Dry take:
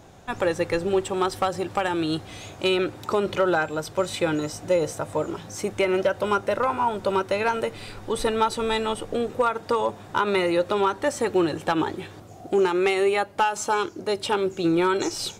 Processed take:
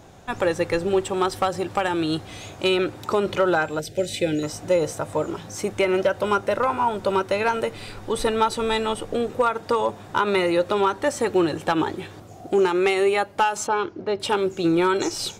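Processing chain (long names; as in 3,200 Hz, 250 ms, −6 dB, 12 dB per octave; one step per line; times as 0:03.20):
0:03.79–0:04.43: Butterworth band-reject 1,100 Hz, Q 0.93
0:13.67–0:14.20: high-frequency loss of the air 250 metres
level +1.5 dB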